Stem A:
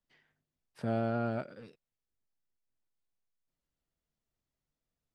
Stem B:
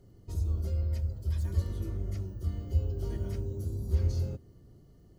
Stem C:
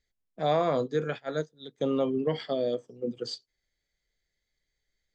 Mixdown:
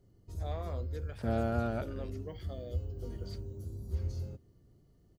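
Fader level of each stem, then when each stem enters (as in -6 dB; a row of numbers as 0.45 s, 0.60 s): -0.5 dB, -7.5 dB, -17.0 dB; 0.40 s, 0.00 s, 0.00 s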